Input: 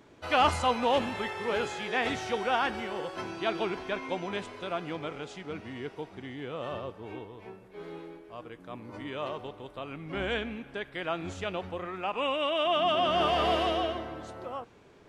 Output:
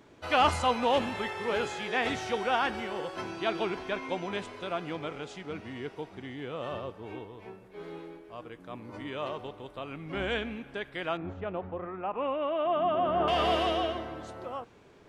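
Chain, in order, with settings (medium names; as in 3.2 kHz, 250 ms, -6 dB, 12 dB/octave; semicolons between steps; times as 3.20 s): 11.17–13.28 s: low-pass 1.3 kHz 12 dB/octave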